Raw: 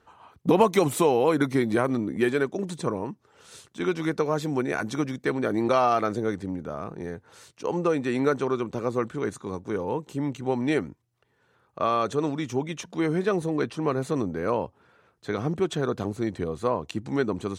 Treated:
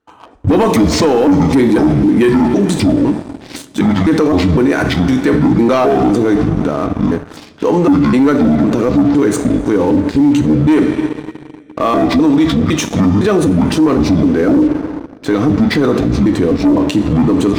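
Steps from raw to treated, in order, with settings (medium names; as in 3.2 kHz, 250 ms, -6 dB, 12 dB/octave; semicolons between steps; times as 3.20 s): pitch shift switched off and on -9.5 st, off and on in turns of 254 ms; gate with hold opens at -46 dBFS; peaking EQ 300 Hz +11 dB 0.39 oct; two-slope reverb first 0.43 s, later 2.9 s, from -15 dB, DRR 7 dB; waveshaping leveller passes 2; loudness maximiser +17.5 dB; trim -4 dB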